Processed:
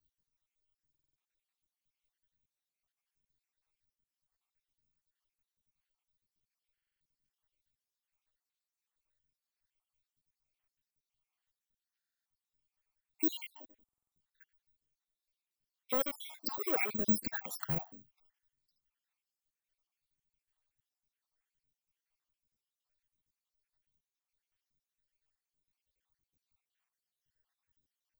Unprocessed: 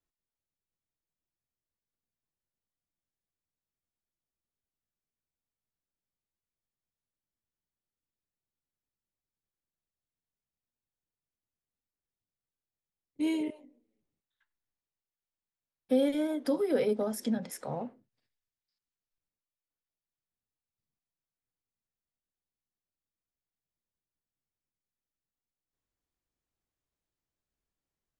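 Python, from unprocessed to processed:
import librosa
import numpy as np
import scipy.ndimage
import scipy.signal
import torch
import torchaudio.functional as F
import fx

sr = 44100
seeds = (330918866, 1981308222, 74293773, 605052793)

p1 = fx.spec_dropout(x, sr, seeds[0], share_pct=65)
p2 = fx.high_shelf(p1, sr, hz=4400.0, db=-9.0)
p3 = fx.over_compress(p2, sr, threshold_db=-34.0, ratio=-1.0)
p4 = p2 + F.gain(torch.from_numpy(p3), 1.0).numpy()
p5 = 10.0 ** (-24.0 / 20.0) * np.tanh(p4 / 10.0 ** (-24.0 / 20.0))
p6 = fx.phaser_stages(p5, sr, stages=2, low_hz=170.0, high_hz=1100.0, hz=1.3, feedback_pct=50)
p7 = (np.kron(p6[::2], np.eye(2)[0]) * 2)[:len(p6)]
y = fx.buffer_glitch(p7, sr, at_s=(0.9, 6.73, 11.98, 13.84), block=2048, repeats=5)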